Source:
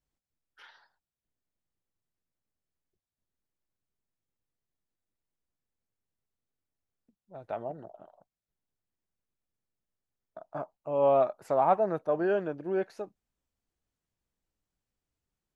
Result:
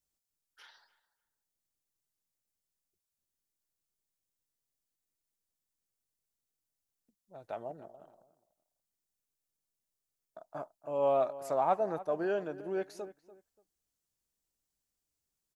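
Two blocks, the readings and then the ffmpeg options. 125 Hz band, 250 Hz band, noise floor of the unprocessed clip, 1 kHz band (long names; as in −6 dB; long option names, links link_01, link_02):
−7.0 dB, −5.5 dB, below −85 dBFS, −4.5 dB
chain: -filter_complex "[0:a]bass=frequency=250:gain=-3,treble=frequency=4000:gain=12,asplit=2[link_01][link_02];[link_02]adelay=290,lowpass=frequency=1900:poles=1,volume=-16dB,asplit=2[link_03][link_04];[link_04]adelay=290,lowpass=frequency=1900:poles=1,volume=0.25[link_05];[link_03][link_05]amix=inputs=2:normalize=0[link_06];[link_01][link_06]amix=inputs=2:normalize=0,volume=-4.5dB"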